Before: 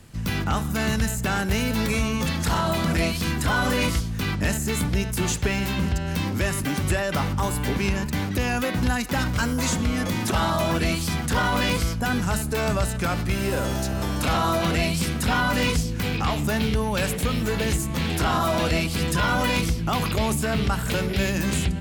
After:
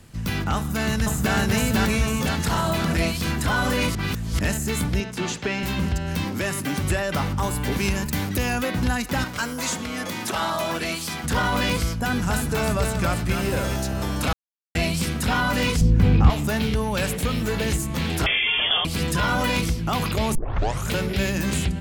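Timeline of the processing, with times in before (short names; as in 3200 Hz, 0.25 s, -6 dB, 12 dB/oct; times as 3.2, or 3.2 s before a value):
0.56–1.35 echo throw 0.5 s, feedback 60%, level -0.5 dB
3.95–4.39 reverse
5–5.63 three-band isolator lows -19 dB, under 150 Hz, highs -16 dB, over 6500 Hz
6.24–6.73 HPF 130 Hz
7.71–8.54 high shelf 5500 Hz -> 9400 Hz +10 dB
9.24–11.24 HPF 420 Hz 6 dB/oct
11.95–13.76 echo 0.275 s -6 dB
14.33–14.75 mute
15.81–16.3 tilt -3.5 dB/oct
18.26–18.85 inverted band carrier 3400 Hz
20.35 tape start 0.56 s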